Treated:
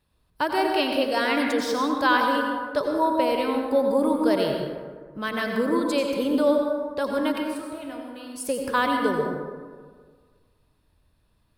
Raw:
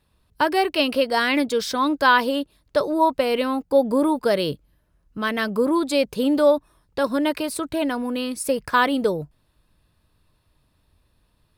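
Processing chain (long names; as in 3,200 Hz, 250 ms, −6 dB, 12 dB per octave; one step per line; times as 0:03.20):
0:07.38–0:08.36: tuned comb filter 68 Hz, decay 0.71 s, harmonics all, mix 80%
dense smooth reverb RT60 1.7 s, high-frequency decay 0.4×, pre-delay 75 ms, DRR 1.5 dB
level −5 dB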